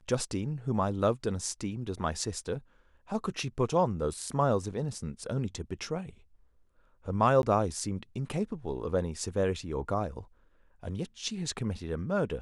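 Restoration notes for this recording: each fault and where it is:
7.42–7.43 gap 11 ms

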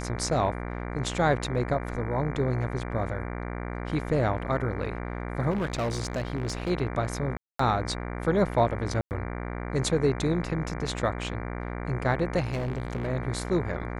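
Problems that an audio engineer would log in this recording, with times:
buzz 60 Hz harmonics 39 -34 dBFS
5.5–6.71 clipped -24.5 dBFS
7.37–7.59 gap 0.224 s
9.01–9.11 gap 99 ms
12.42–13.08 clipped -25.5 dBFS

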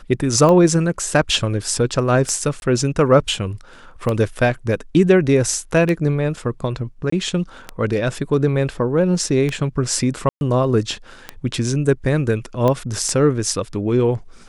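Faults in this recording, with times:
tick 33 1/3 rpm -9 dBFS
2.6–2.62 gap 21 ms
7.1–7.12 gap 24 ms
10.29–10.41 gap 0.121 s
12.68 pop -8 dBFS

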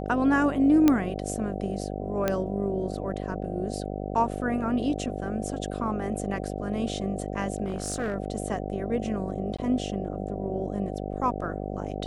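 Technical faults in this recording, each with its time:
buzz 50 Hz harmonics 15 -33 dBFS
0.88 pop -8 dBFS
2.28 pop -11 dBFS
7.64–8.14 clipped -24.5 dBFS
9.57–9.59 gap 15 ms

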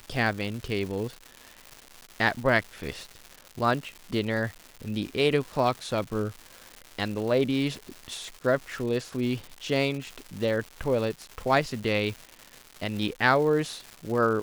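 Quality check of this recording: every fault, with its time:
crackle 350/s -34 dBFS

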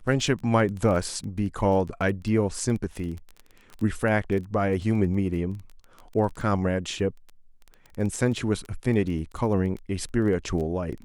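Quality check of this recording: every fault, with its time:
crackle 15/s -31 dBFS

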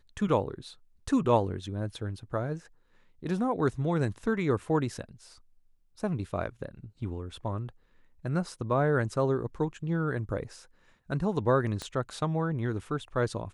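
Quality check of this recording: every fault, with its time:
11.82 pop -21 dBFS

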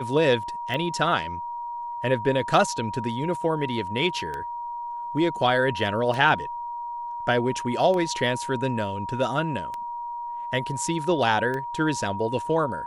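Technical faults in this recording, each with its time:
tick 33 1/3 rpm -19 dBFS
tone 950 Hz -30 dBFS

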